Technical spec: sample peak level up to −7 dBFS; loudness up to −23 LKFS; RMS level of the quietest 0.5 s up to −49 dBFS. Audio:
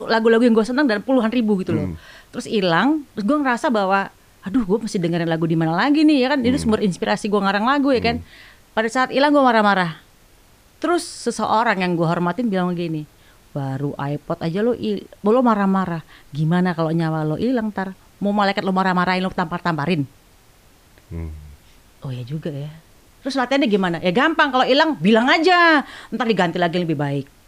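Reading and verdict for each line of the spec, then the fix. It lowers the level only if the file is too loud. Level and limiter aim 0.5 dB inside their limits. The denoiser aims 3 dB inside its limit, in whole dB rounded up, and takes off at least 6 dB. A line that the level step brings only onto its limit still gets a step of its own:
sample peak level −4.0 dBFS: out of spec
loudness −19.0 LKFS: out of spec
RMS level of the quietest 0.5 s −51 dBFS: in spec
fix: level −4.5 dB

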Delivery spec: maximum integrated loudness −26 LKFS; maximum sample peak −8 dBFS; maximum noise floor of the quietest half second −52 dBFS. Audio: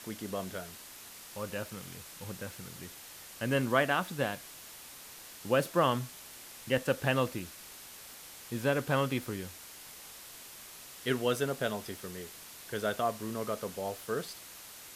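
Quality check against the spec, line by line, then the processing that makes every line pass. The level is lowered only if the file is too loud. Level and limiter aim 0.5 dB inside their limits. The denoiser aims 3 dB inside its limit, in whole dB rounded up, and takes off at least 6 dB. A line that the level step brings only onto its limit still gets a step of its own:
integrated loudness −33.5 LKFS: in spec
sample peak −13.0 dBFS: in spec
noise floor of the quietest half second −49 dBFS: out of spec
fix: broadband denoise 6 dB, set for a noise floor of −49 dBFS

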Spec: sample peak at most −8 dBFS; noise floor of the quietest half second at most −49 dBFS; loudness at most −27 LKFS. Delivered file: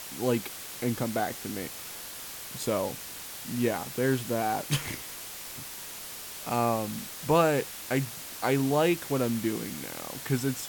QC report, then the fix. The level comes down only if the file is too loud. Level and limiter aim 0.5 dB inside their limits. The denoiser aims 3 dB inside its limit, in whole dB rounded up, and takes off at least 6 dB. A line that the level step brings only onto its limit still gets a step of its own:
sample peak −10.5 dBFS: in spec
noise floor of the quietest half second −41 dBFS: out of spec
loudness −30.5 LKFS: in spec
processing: broadband denoise 11 dB, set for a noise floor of −41 dBFS

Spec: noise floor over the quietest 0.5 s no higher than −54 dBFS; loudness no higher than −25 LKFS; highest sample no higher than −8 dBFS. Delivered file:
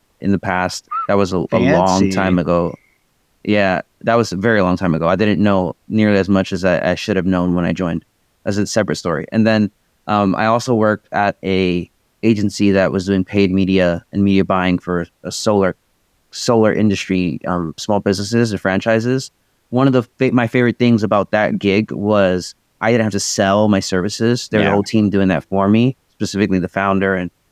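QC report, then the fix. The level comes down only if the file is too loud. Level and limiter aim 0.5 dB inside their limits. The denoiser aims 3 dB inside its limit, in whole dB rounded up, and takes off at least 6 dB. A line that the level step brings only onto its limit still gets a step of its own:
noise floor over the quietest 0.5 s −61 dBFS: in spec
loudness −16.5 LKFS: out of spec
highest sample −1.5 dBFS: out of spec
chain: level −9 dB

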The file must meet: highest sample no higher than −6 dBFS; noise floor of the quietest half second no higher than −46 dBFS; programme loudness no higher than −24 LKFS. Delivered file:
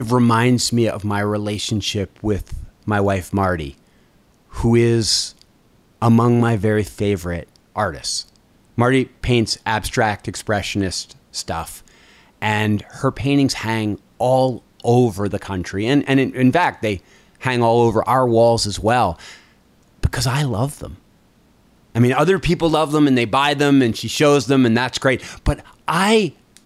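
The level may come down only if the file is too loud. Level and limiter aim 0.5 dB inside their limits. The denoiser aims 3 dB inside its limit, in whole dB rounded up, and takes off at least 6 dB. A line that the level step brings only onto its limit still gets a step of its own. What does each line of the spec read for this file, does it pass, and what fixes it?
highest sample −4.5 dBFS: out of spec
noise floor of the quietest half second −55 dBFS: in spec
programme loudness −18.5 LKFS: out of spec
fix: level −6 dB

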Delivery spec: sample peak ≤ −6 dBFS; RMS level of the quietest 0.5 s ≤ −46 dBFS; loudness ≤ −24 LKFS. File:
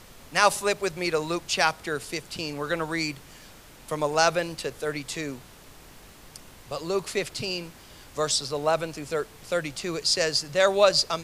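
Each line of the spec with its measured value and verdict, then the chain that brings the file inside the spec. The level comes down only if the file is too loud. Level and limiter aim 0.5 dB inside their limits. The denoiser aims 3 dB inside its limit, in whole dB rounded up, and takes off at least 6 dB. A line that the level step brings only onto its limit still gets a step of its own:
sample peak −5.5 dBFS: out of spec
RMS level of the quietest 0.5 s −49 dBFS: in spec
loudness −26.0 LKFS: in spec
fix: brickwall limiter −6.5 dBFS

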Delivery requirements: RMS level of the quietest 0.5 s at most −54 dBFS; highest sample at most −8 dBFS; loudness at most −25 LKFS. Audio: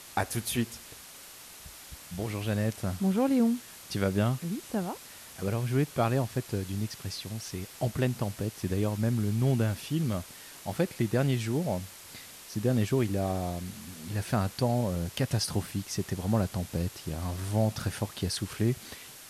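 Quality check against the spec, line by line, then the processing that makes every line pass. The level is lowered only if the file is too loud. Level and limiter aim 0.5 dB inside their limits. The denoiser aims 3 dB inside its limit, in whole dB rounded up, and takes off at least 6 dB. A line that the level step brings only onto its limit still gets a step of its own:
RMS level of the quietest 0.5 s −48 dBFS: out of spec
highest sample −14.0 dBFS: in spec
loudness −30.5 LKFS: in spec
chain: broadband denoise 9 dB, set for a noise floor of −48 dBFS

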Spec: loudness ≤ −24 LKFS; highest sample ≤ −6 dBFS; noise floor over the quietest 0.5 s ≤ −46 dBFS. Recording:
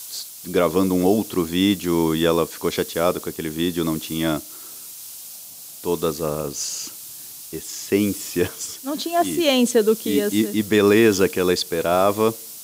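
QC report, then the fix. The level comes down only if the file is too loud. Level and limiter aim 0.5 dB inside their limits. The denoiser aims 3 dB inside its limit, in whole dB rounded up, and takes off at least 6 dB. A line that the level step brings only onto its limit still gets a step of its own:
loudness −21.0 LKFS: out of spec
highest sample −5.0 dBFS: out of spec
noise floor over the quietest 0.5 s −39 dBFS: out of spec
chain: broadband denoise 7 dB, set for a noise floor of −39 dBFS
level −3.5 dB

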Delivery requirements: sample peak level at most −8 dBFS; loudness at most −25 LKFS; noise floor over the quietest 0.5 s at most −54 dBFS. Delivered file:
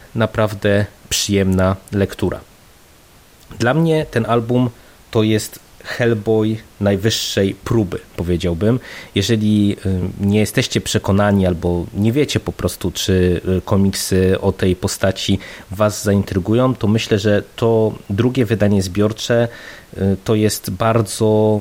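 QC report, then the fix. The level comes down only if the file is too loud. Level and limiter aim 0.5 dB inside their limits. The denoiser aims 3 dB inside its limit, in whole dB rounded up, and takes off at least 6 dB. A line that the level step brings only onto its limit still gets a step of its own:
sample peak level −3.0 dBFS: out of spec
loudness −17.5 LKFS: out of spec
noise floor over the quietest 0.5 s −46 dBFS: out of spec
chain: broadband denoise 6 dB, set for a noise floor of −46 dBFS
level −8 dB

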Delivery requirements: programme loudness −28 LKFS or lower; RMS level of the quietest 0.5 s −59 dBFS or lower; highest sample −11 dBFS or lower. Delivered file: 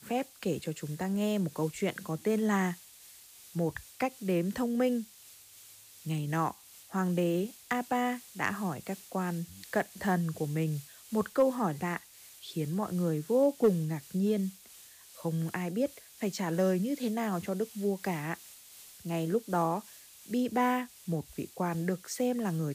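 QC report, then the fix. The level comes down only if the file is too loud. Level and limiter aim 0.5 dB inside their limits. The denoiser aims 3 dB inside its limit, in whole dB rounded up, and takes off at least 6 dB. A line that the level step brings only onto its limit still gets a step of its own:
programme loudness −32.5 LKFS: in spec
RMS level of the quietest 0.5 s −55 dBFS: out of spec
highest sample −16.5 dBFS: in spec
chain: broadband denoise 7 dB, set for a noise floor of −55 dBFS

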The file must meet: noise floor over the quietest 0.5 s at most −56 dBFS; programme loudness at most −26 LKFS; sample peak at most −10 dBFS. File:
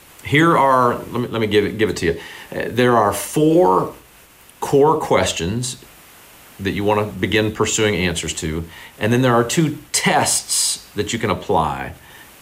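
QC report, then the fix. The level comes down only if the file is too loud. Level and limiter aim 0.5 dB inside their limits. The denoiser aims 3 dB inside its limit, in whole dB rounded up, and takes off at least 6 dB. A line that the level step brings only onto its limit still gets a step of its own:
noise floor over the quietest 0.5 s −47 dBFS: out of spec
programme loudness −17.5 LKFS: out of spec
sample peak −4.5 dBFS: out of spec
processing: broadband denoise 6 dB, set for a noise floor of −47 dBFS
level −9 dB

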